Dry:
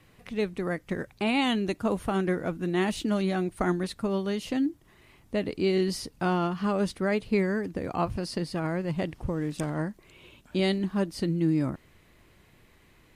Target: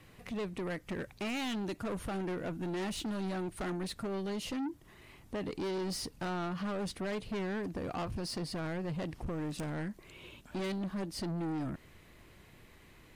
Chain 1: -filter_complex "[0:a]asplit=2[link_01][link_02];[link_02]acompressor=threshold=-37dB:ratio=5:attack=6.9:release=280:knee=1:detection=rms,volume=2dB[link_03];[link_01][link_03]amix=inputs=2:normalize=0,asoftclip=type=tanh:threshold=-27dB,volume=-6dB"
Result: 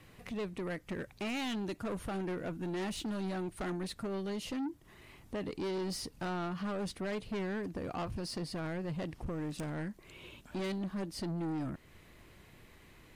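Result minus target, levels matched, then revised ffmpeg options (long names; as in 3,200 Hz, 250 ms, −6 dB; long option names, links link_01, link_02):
downward compressor: peak gain reduction +6.5 dB
-filter_complex "[0:a]asplit=2[link_01][link_02];[link_02]acompressor=threshold=-29dB:ratio=5:attack=6.9:release=280:knee=1:detection=rms,volume=2dB[link_03];[link_01][link_03]amix=inputs=2:normalize=0,asoftclip=type=tanh:threshold=-27dB,volume=-6dB"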